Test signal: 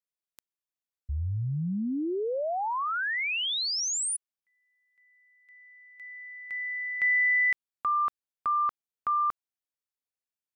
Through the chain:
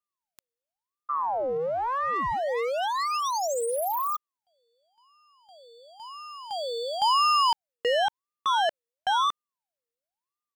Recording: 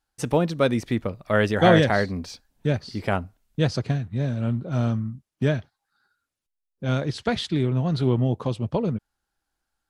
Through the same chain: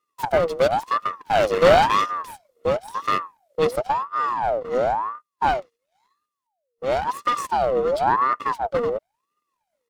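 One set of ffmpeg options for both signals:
-af "aeval=exprs='abs(val(0))':c=same,aecho=1:1:1.3:0.91,aeval=exprs='val(0)*sin(2*PI*840*n/s+840*0.45/0.96*sin(2*PI*0.96*n/s))':c=same"

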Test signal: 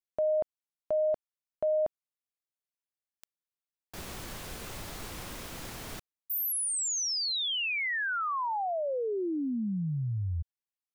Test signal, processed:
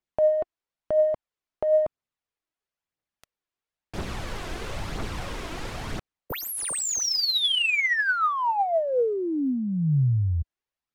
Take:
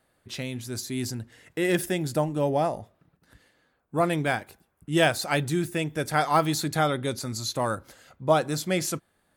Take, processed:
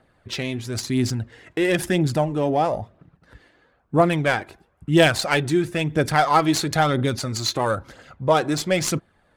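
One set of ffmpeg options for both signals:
-filter_complex "[0:a]asplit=2[s0][s1];[s1]acompressor=threshold=0.0224:ratio=6:attack=12:release=41:knee=1:detection=rms,volume=1.26[s2];[s0][s2]amix=inputs=2:normalize=0,aemphasis=mode=production:type=75kf,adynamicsmooth=sensitivity=0.5:basefreq=2300,aphaser=in_gain=1:out_gain=1:delay=3.2:decay=0.41:speed=1:type=triangular,volume=1.12"

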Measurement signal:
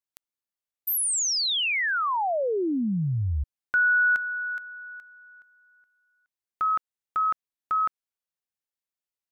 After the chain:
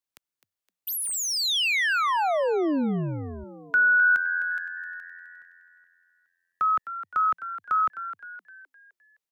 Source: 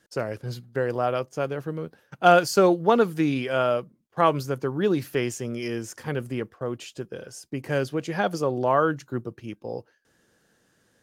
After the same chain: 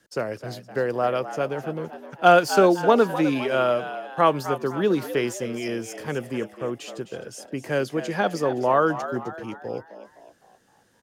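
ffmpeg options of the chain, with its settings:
-filter_complex "[0:a]acrossover=split=150|660|3800[s0][s1][s2][s3];[s0]acompressor=threshold=0.00398:ratio=6[s4];[s3]asoftclip=type=tanh:threshold=0.0335[s5];[s4][s1][s2][s5]amix=inputs=4:normalize=0,asplit=6[s6][s7][s8][s9][s10][s11];[s7]adelay=258,afreqshift=87,volume=0.251[s12];[s8]adelay=516,afreqshift=174,volume=0.116[s13];[s9]adelay=774,afreqshift=261,volume=0.0531[s14];[s10]adelay=1032,afreqshift=348,volume=0.0245[s15];[s11]adelay=1290,afreqshift=435,volume=0.0112[s16];[s6][s12][s13][s14][s15][s16]amix=inputs=6:normalize=0,volume=1.19"

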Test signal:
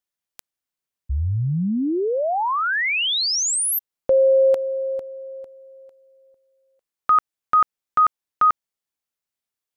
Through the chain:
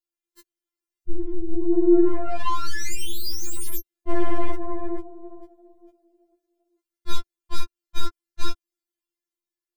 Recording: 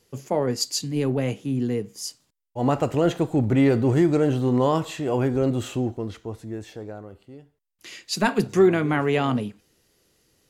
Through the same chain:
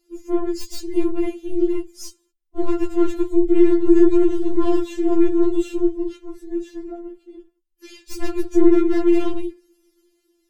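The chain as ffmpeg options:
-filter_complex "[0:a]afftfilt=real='hypot(re,im)*cos(2*PI*random(0))':imag='hypot(re,im)*sin(2*PI*random(1))':win_size=512:overlap=0.75,asplit=2[s0][s1];[s1]alimiter=limit=0.106:level=0:latency=1:release=20,volume=1.19[s2];[s0][s2]amix=inputs=2:normalize=0,dynaudnorm=f=110:g=11:m=1.5,aeval=exprs='(tanh(5.62*val(0)+0.55)-tanh(0.55))/5.62':c=same,lowshelf=f=450:t=q:w=1.5:g=10,acrossover=split=780[s3][s4];[s4]aeval=exprs='0.0596*(abs(mod(val(0)/0.0596+3,4)-2)-1)':c=same[s5];[s3][s5]amix=inputs=2:normalize=0,afftfilt=real='re*4*eq(mod(b,16),0)':imag='im*4*eq(mod(b,16),0)':win_size=2048:overlap=0.75,volume=0.708"

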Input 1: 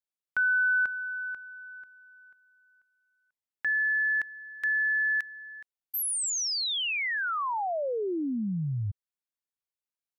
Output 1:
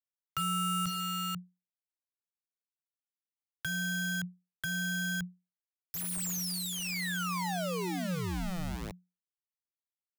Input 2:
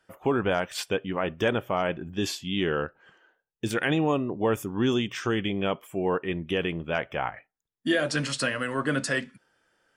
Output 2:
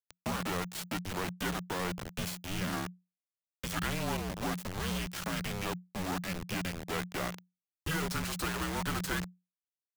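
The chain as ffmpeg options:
-filter_complex "[0:a]acrossover=split=210|890|2000|6100[s0][s1][s2][s3][s4];[s0]acompressor=threshold=0.0126:ratio=8[s5];[s1]acompressor=threshold=0.0224:ratio=5[s6];[s2]acompressor=threshold=0.0282:ratio=6[s7];[s3]acompressor=threshold=0.00891:ratio=5[s8];[s4]acompressor=threshold=0.00891:ratio=2[s9];[s5][s6][s7][s8][s9]amix=inputs=5:normalize=0,acrusher=bits=3:dc=4:mix=0:aa=0.000001,afreqshift=-180"

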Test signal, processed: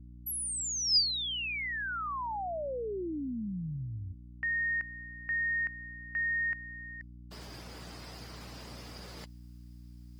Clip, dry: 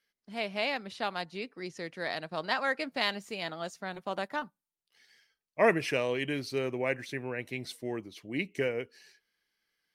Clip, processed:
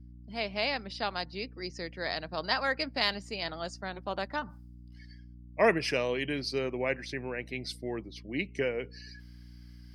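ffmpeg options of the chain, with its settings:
-af "highpass=110,afftdn=nr=18:nf=-57,equalizer=f=4900:t=o:w=0.23:g=13.5,areverse,acompressor=mode=upward:threshold=0.00794:ratio=2.5,areverse,aeval=exprs='val(0)+0.00398*(sin(2*PI*60*n/s)+sin(2*PI*2*60*n/s)/2+sin(2*PI*3*60*n/s)/3+sin(2*PI*4*60*n/s)/4+sin(2*PI*5*60*n/s)/5)':c=same"

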